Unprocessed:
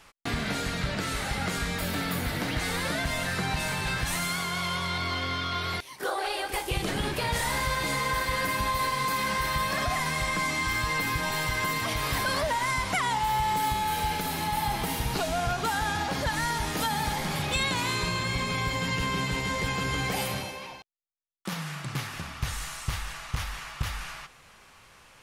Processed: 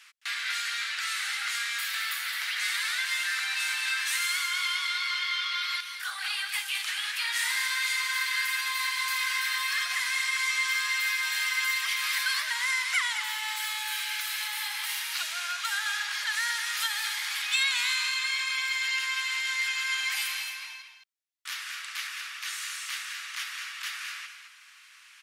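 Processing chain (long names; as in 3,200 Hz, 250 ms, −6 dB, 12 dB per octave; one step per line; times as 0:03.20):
inverse Chebyshev high-pass filter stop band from 340 Hz, stop band 70 dB
high-shelf EQ 7,800 Hz −5 dB
single-tap delay 215 ms −8.5 dB
level +4 dB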